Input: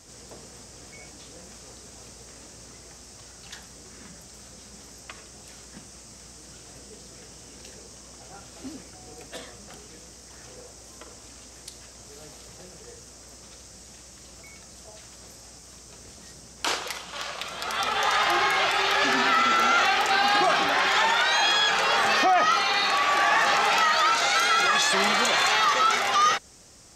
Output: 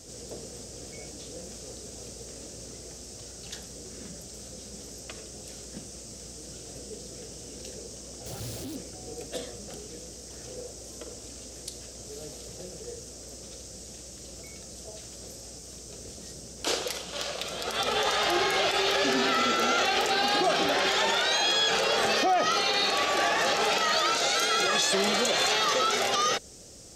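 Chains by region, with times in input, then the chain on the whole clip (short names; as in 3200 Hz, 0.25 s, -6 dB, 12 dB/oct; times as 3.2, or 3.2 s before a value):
8.26–8.76 infinite clipping + bell 110 Hz +14 dB 0.63 oct + Doppler distortion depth 0.6 ms
whole clip: graphic EQ 500/1000/2000 Hz +6/-10/-6 dB; limiter -19.5 dBFS; gain +3.5 dB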